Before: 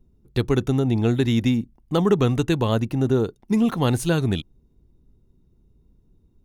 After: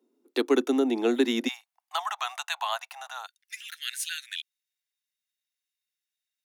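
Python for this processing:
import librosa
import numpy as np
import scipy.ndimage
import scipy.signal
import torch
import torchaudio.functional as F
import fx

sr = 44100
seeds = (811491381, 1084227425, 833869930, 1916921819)

y = fx.steep_highpass(x, sr, hz=fx.steps((0.0, 250.0), (1.47, 700.0), (3.26, 1600.0)), slope=72)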